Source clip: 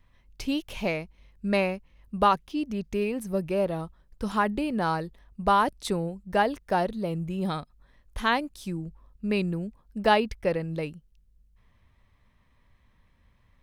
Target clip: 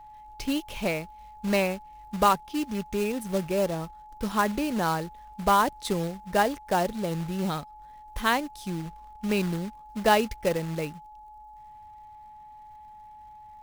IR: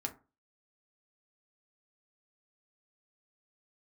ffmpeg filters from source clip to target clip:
-af "acrusher=bits=3:mode=log:mix=0:aa=0.000001,aeval=exprs='val(0)+0.00562*sin(2*PI*850*n/s)':channel_layout=same"

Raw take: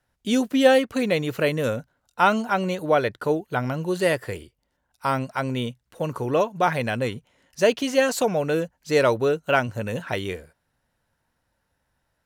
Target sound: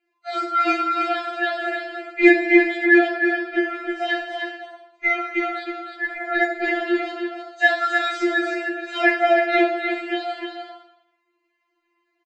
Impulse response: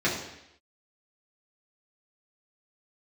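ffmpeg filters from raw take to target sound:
-filter_complex "[0:a]highshelf=frequency=2700:gain=-11,aresample=16000,aresample=44100,lowshelf=frequency=140:gain=-7,aeval=exprs='val(0)*sin(2*PI*1100*n/s)':channel_layout=same,bandreject=frequency=1100:width=11,aecho=1:1:307|425:0.501|0.126[link_01];[1:a]atrim=start_sample=2205,asetrate=48510,aresample=44100[link_02];[link_01][link_02]afir=irnorm=-1:irlink=0,aeval=exprs='1.78*(cos(1*acos(clip(val(0)/1.78,-1,1)))-cos(1*PI/2))+0.0447*(cos(5*acos(clip(val(0)/1.78,-1,1)))-cos(5*PI/2))':channel_layout=same,afftfilt=real='re*4*eq(mod(b,16),0)':imag='im*4*eq(mod(b,16),0)':win_size=2048:overlap=0.75,volume=-3.5dB"

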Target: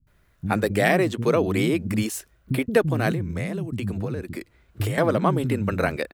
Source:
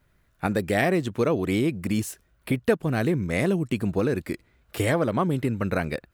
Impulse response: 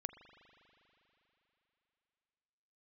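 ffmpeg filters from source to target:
-filter_complex "[0:a]acrossover=split=230[link_01][link_02];[link_02]adelay=70[link_03];[link_01][link_03]amix=inputs=2:normalize=0,asettb=1/sr,asplit=3[link_04][link_05][link_06];[link_04]atrim=end=3.114[link_07];[link_05]atrim=start=3.11:end=4.98,asetpts=PTS-STARTPTS,afade=type=in:duration=0.004:curve=qsin,afade=type=out:start_time=1.866:duration=0.004:curve=qsin,acrossover=split=160[link_08][link_09];[link_09]acompressor=threshold=-33dB:ratio=10[link_10];[link_08][link_10]amix=inputs=2:normalize=0[link_11];[link_06]atrim=start=4.976[link_12];[link_07][link_11]acrossfade=duration=0.004:curve1=hsin:curve2=qsin[link_13];[link_13][link_12]acrossfade=duration=0.004:curve1=qsin:curve2=hsin,volume=3.5dB"

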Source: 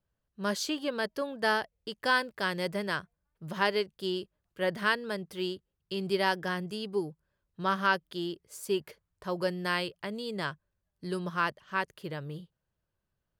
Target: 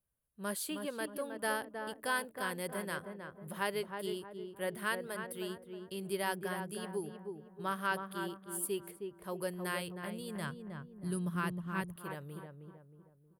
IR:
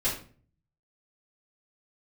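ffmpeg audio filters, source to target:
-filter_complex "[0:a]highshelf=frequency=7800:width_type=q:width=3:gain=10.5,asplit=2[link_01][link_02];[link_02]adelay=315,lowpass=frequency=1200:poles=1,volume=-5dB,asplit=2[link_03][link_04];[link_04]adelay=315,lowpass=frequency=1200:poles=1,volume=0.45,asplit=2[link_05][link_06];[link_06]adelay=315,lowpass=frequency=1200:poles=1,volume=0.45,asplit=2[link_07][link_08];[link_08]adelay=315,lowpass=frequency=1200:poles=1,volume=0.45,asplit=2[link_09][link_10];[link_10]adelay=315,lowpass=frequency=1200:poles=1,volume=0.45,asplit=2[link_11][link_12];[link_12]adelay=315,lowpass=frequency=1200:poles=1,volume=0.45[link_13];[link_01][link_03][link_05][link_07][link_09][link_11][link_13]amix=inputs=7:normalize=0,asettb=1/sr,asplit=3[link_14][link_15][link_16];[link_14]atrim=end=9.644[link_17];[link_15]atrim=start=9.64:end=11.96,asetpts=PTS-STARTPTS,afade=type=in:duration=0.004:curve=qsin,afade=type=out:start_time=2.316:duration=0.004:curve=qsin,asubboost=boost=8.5:cutoff=220[link_18];[link_16]atrim=start=11.956[link_19];[link_17][link_18]acrossfade=duration=0.004:curve1=hsin:curve2=qsin[link_20];[link_20][link_19]acrossfade=duration=0.004:curve1=qsin:curve2=hsin,volume=-7.5dB"

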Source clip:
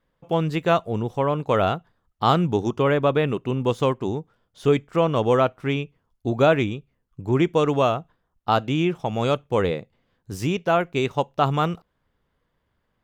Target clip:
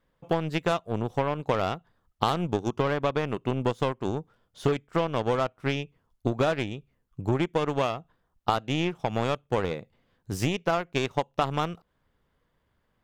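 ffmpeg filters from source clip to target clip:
ffmpeg -i in.wav -af "aeval=exprs='0.531*(cos(1*acos(clip(val(0)/0.531,-1,1)))-cos(1*PI/2))+0.119*(cos(2*acos(clip(val(0)/0.531,-1,1)))-cos(2*PI/2))+0.0422*(cos(4*acos(clip(val(0)/0.531,-1,1)))-cos(4*PI/2))+0.0473*(cos(7*acos(clip(val(0)/0.531,-1,1)))-cos(7*PI/2))':channel_layout=same,acompressor=threshold=-31dB:ratio=6,volume=8.5dB" out.wav

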